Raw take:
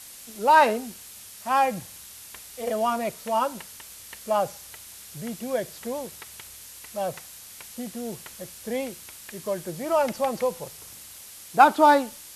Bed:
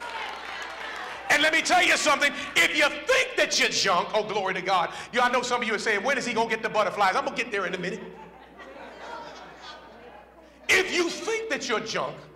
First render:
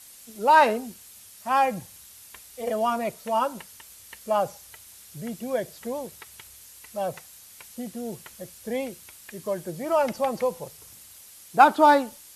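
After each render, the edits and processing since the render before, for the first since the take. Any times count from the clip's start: denoiser 6 dB, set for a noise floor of -45 dBFS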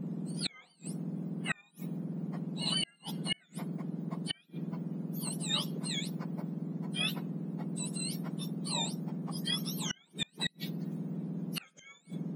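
spectrum mirrored in octaves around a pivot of 1400 Hz; flipped gate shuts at -20 dBFS, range -36 dB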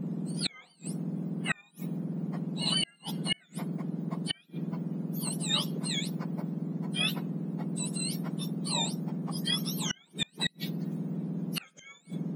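gain +3.5 dB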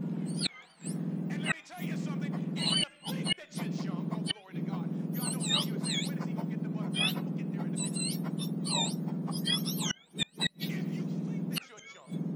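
add bed -26.5 dB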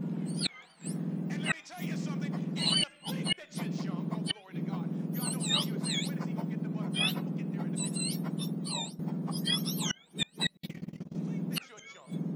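1.28–2.92 bell 5500 Hz +5.5 dB 0.64 oct; 8.51–8.99 fade out, to -13.5 dB; 10.57–11.15 gate -33 dBFS, range -48 dB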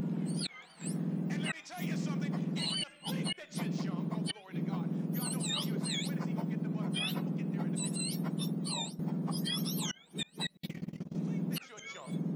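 upward compressor, threshold -37 dBFS; limiter -25.5 dBFS, peak gain reduction 11.5 dB

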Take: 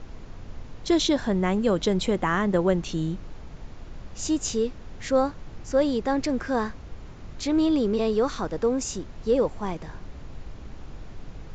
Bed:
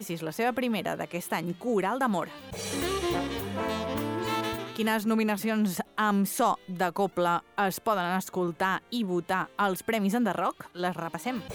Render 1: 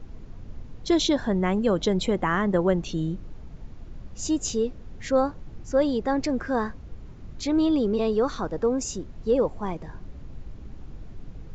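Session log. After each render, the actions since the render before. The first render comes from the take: denoiser 8 dB, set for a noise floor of -42 dBFS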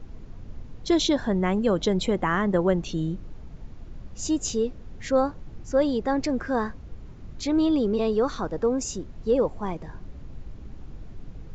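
nothing audible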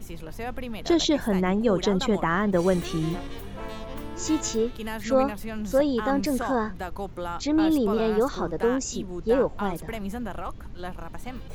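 add bed -7 dB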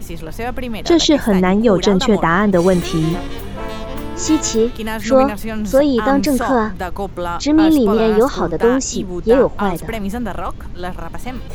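gain +10 dB; limiter -2 dBFS, peak gain reduction 2.5 dB

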